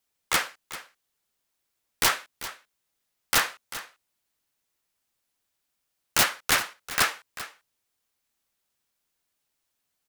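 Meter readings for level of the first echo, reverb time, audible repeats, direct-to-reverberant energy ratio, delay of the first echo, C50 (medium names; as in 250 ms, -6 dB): -14.5 dB, no reverb, 1, no reverb, 392 ms, no reverb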